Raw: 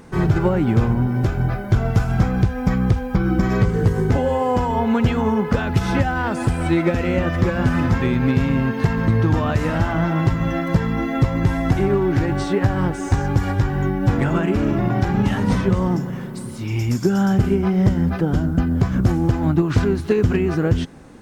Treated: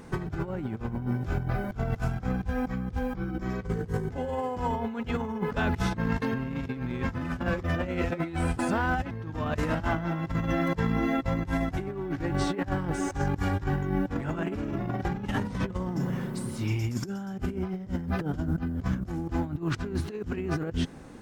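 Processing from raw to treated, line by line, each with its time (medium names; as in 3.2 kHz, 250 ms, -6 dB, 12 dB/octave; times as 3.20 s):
5.94–9.11 s: reverse
whole clip: compressor with a negative ratio -22 dBFS, ratio -0.5; trim -7 dB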